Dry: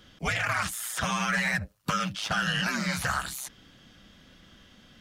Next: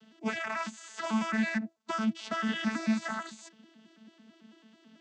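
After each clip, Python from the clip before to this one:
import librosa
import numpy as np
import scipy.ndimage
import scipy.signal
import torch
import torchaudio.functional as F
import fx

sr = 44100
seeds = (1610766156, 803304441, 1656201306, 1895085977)

y = fx.vocoder_arp(x, sr, chord='bare fifth', root=57, every_ms=110)
y = fx.high_shelf(y, sr, hz=6100.0, db=7.5)
y = F.gain(torch.from_numpy(y), -2.0).numpy()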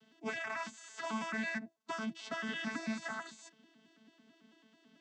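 y = x + 0.58 * np.pad(x, (int(7.2 * sr / 1000.0), 0))[:len(x)]
y = F.gain(torch.from_numpy(y), -6.0).numpy()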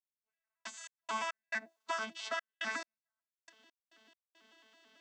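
y = scipy.signal.sosfilt(scipy.signal.butter(2, 600.0, 'highpass', fs=sr, output='sos'), x)
y = fx.step_gate(y, sr, bpm=69, pattern='...x.x.xxxx.x', floor_db=-60.0, edge_ms=4.5)
y = F.gain(torch.from_numpy(y), 5.0).numpy()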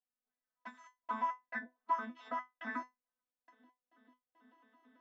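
y = scipy.signal.sosfilt(scipy.signal.butter(2, 1100.0, 'lowpass', fs=sr, output='sos'), x)
y = fx.comb_fb(y, sr, f0_hz=250.0, decay_s=0.18, harmonics='all', damping=0.0, mix_pct=100)
y = F.gain(torch.from_numpy(y), 16.0).numpy()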